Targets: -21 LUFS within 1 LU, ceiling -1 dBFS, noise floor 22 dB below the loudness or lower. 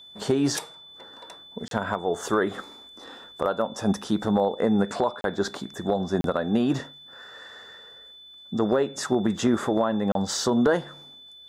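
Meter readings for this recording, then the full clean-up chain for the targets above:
dropouts 4; longest dropout 32 ms; steady tone 3500 Hz; tone level -45 dBFS; loudness -25.5 LUFS; peak -11.0 dBFS; loudness target -21.0 LUFS
-> interpolate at 1.68/5.21/6.21/10.12, 32 ms; notch 3500 Hz, Q 30; gain +4.5 dB

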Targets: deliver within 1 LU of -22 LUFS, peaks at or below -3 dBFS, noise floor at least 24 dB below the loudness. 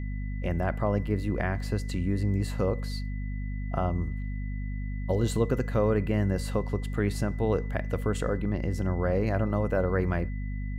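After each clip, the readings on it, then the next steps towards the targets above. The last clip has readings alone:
hum 50 Hz; harmonics up to 250 Hz; hum level -30 dBFS; steady tone 2000 Hz; tone level -49 dBFS; loudness -29.5 LUFS; peak -12.0 dBFS; loudness target -22.0 LUFS
-> de-hum 50 Hz, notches 5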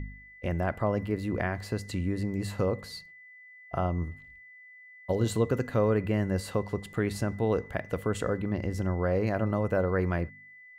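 hum none; steady tone 2000 Hz; tone level -49 dBFS
-> notch 2000 Hz, Q 30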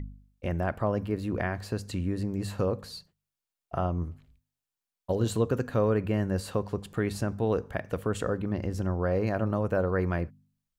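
steady tone none; loudness -30.0 LUFS; peak -13.5 dBFS; loudness target -22.0 LUFS
-> gain +8 dB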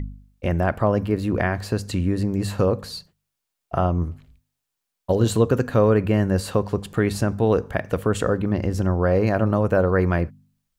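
loudness -22.0 LUFS; peak -5.5 dBFS; noise floor -81 dBFS

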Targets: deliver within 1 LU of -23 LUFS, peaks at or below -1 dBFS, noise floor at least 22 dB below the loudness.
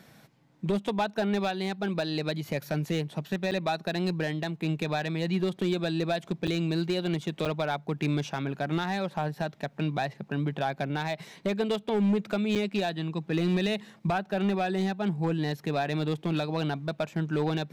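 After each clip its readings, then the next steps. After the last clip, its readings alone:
clipped 1.1%; flat tops at -20.5 dBFS; dropouts 4; longest dropout 6.8 ms; loudness -30.0 LUFS; peak -20.5 dBFS; loudness target -23.0 LUFS
-> clip repair -20.5 dBFS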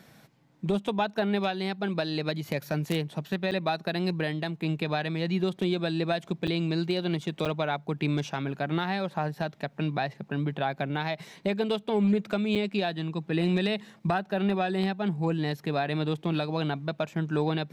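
clipped 0.0%; dropouts 4; longest dropout 6.8 ms
-> interpolate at 3.51/6.47/7.45/12.55, 6.8 ms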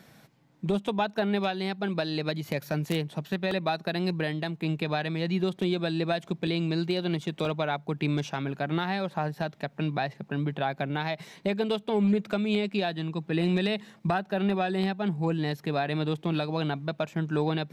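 dropouts 0; loudness -29.5 LUFS; peak -11.5 dBFS; loudness target -23.0 LUFS
-> gain +6.5 dB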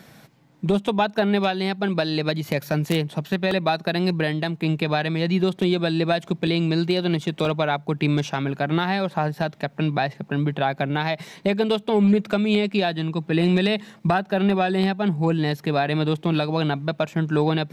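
loudness -23.0 LUFS; peak -5.0 dBFS; noise floor -51 dBFS

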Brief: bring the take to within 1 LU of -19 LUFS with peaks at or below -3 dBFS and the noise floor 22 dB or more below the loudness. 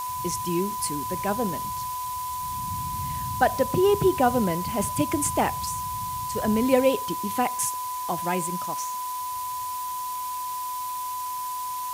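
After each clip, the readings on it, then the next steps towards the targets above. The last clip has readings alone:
steady tone 1000 Hz; tone level -29 dBFS; noise floor -31 dBFS; noise floor target -49 dBFS; loudness -26.5 LUFS; peak -7.0 dBFS; loudness target -19.0 LUFS
-> notch 1000 Hz, Q 30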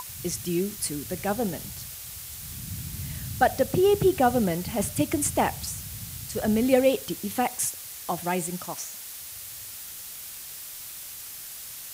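steady tone none; noise floor -40 dBFS; noise floor target -50 dBFS
-> denoiser 10 dB, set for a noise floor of -40 dBFS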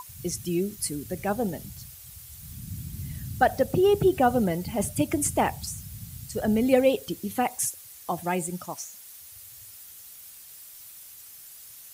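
noise floor -47 dBFS; noise floor target -49 dBFS
-> denoiser 6 dB, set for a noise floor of -47 dBFS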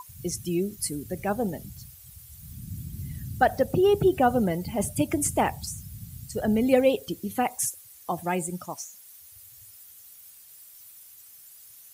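noise floor -50 dBFS; loudness -26.5 LUFS; peak -7.0 dBFS; loudness target -19.0 LUFS
-> gain +7.5 dB; limiter -3 dBFS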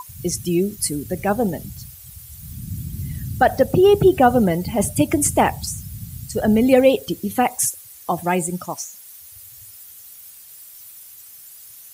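loudness -19.5 LUFS; peak -3.0 dBFS; noise floor -43 dBFS

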